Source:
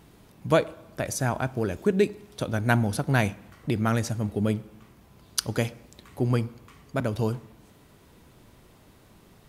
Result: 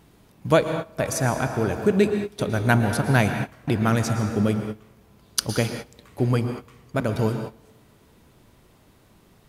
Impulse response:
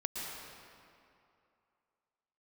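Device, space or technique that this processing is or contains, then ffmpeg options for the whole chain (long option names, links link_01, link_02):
keyed gated reverb: -filter_complex "[0:a]asplit=3[link_01][link_02][link_03];[1:a]atrim=start_sample=2205[link_04];[link_02][link_04]afir=irnorm=-1:irlink=0[link_05];[link_03]apad=whole_len=418318[link_06];[link_05][link_06]sidechaingate=range=-22dB:threshold=-42dB:ratio=16:detection=peak,volume=-1.5dB[link_07];[link_01][link_07]amix=inputs=2:normalize=0,volume=-1.5dB"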